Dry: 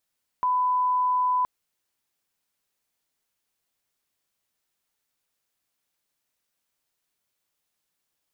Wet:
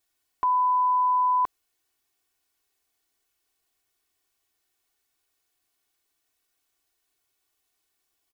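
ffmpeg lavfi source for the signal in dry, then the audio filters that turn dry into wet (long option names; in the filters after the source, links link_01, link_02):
-f lavfi -i "sine=frequency=1000:duration=1.02:sample_rate=44100,volume=-1.94dB"
-af "aecho=1:1:2.7:0.98"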